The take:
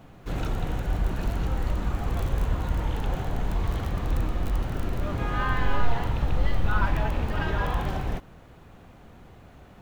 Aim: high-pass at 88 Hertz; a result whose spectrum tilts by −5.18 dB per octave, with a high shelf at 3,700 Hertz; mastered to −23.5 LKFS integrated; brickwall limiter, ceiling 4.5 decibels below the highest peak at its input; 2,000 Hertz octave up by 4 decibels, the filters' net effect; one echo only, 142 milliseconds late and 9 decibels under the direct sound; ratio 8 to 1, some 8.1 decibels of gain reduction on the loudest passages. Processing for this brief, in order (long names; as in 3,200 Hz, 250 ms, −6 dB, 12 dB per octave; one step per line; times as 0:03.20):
high-pass filter 88 Hz
parametric band 2,000 Hz +6.5 dB
high-shelf EQ 3,700 Hz −4.5 dB
downward compressor 8 to 1, threshold −31 dBFS
brickwall limiter −27.5 dBFS
single-tap delay 142 ms −9 dB
level +13 dB